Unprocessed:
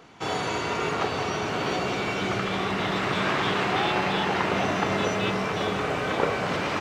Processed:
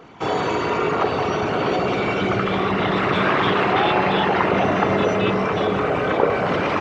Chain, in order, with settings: formant sharpening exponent 1.5; gain +6.5 dB

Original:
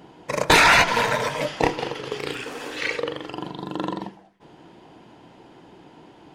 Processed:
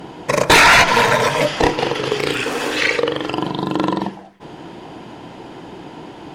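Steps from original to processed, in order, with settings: in parallel at +3 dB: compressor, threshold -30 dBFS, peak gain reduction 17.5 dB; on the sum: sine folder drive 6 dB, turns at 0 dBFS; gain -4.5 dB

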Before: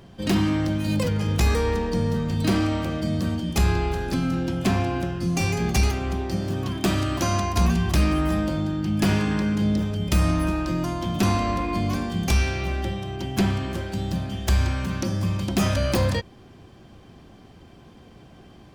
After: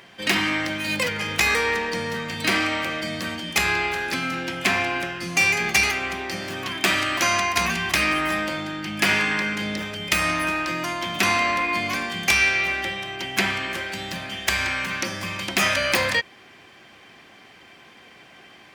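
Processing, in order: HPF 940 Hz 6 dB/oct; bell 2100 Hz +11 dB 0.91 oct; gain +5 dB

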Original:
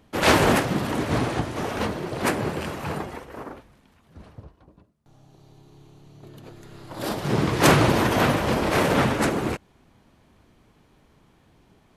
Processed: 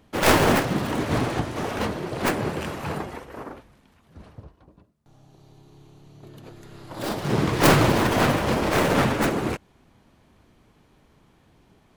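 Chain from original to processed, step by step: tracing distortion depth 0.4 ms

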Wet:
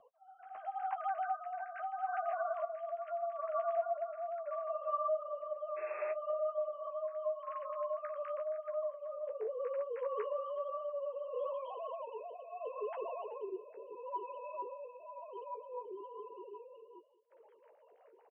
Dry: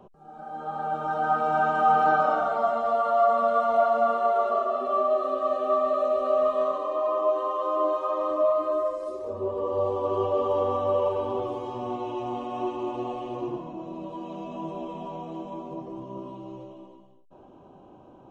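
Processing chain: sine-wave speech; echo 0.378 s -22 dB; painted sound noise, 5.76–6.12, 340–2700 Hz -32 dBFS; compressor 5:1, threshold -35 dBFS, peak gain reduction 19.5 dB; flange 0.92 Hz, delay 8.7 ms, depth 7.4 ms, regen -34%; rotary speaker horn 0.75 Hz, later 5.5 Hz, at 15.18; gain +5 dB

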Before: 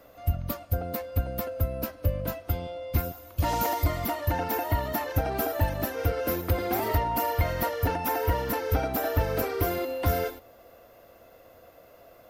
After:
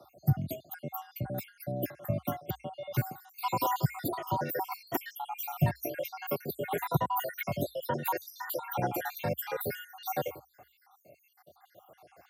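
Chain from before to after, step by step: random spectral dropouts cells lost 69%; frequency shift +60 Hz

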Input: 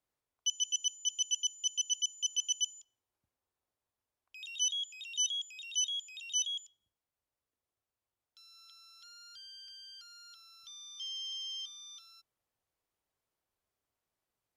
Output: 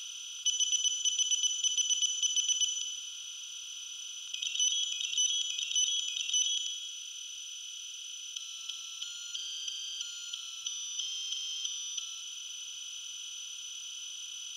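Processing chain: per-bin compression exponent 0.2; 6.43–8.58 HPF 1300 Hz 24 dB/oct

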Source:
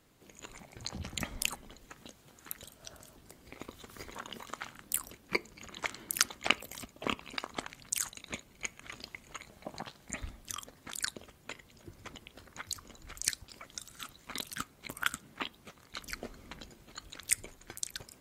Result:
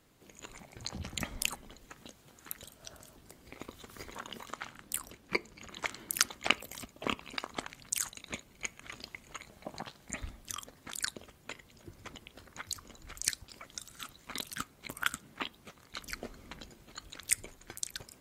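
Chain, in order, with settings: 4.52–5.69 high shelf 9600 Hz -6.5 dB

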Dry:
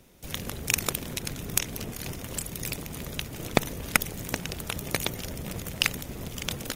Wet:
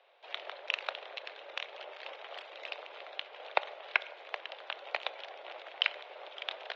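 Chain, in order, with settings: vocal rider within 5 dB 2 s; on a send at -17 dB: reverb RT60 0.85 s, pre-delay 4 ms; on the sum: mistuned SSB +160 Hz 380–3600 Hz; gain -5 dB

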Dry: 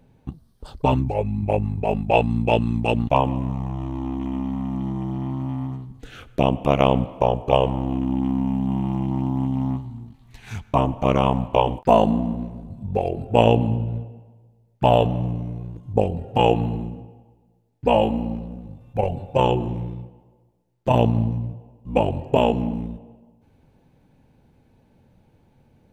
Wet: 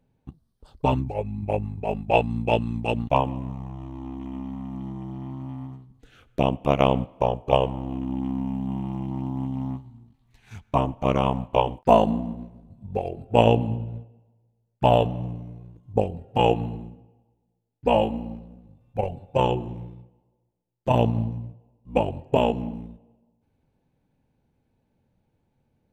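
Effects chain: upward expander 1.5:1, over -37 dBFS

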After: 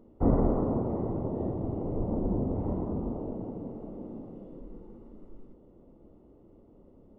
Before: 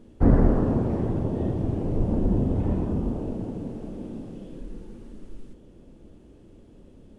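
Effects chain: polynomial smoothing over 65 samples; low shelf 300 Hz -9 dB

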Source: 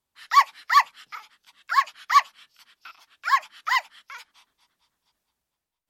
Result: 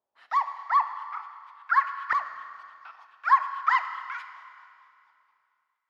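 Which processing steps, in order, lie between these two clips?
0.57–2.15 high shelf 2100 Hz -6.5 dB; compressor, threshold -20 dBFS, peak gain reduction 10 dB; LFO band-pass saw up 0.47 Hz 610–1600 Hz; Schroeder reverb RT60 2.4 s, combs from 26 ms, DRR 9 dB; gain +6.5 dB

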